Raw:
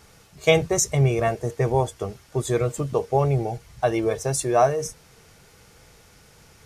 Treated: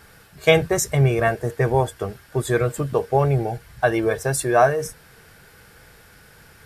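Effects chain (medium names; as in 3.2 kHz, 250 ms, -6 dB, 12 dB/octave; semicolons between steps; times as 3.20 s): graphic EQ with 31 bands 1.6 kHz +11 dB, 6.3 kHz -8 dB, 12.5 kHz +6 dB; trim +2 dB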